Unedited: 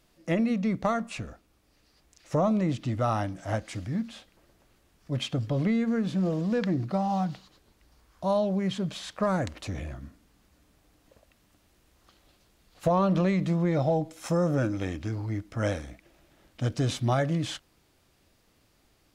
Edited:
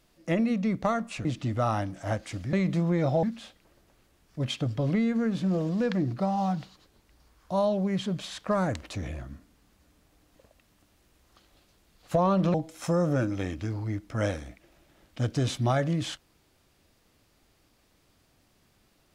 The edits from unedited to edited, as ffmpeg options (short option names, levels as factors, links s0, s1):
-filter_complex "[0:a]asplit=5[s0][s1][s2][s3][s4];[s0]atrim=end=1.252[s5];[s1]atrim=start=2.668:end=3.952[s6];[s2]atrim=start=13.258:end=13.962[s7];[s3]atrim=start=3.948:end=13.262[s8];[s4]atrim=start=13.958[s9];[s5][s6]acrossfade=d=0.004:c1=hsin:c2=hsin[s10];[s10][s7]acrossfade=d=0.004:c1=hsin:c2=hsin[s11];[s11][s8]acrossfade=d=0.004:c1=hsin:c2=hsin[s12];[s12][s9]acrossfade=d=0.004:c1=hsin:c2=hsin"